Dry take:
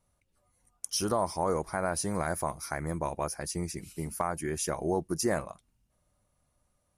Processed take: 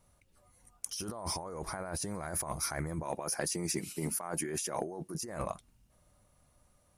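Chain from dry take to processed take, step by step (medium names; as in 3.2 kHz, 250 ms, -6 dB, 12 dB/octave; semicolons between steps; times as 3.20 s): 3.03–5.22 s: high-pass 180 Hz 12 dB/octave; compressor with a negative ratio -38 dBFS, ratio -1; saturation -19.5 dBFS, distortion -25 dB; trim +1 dB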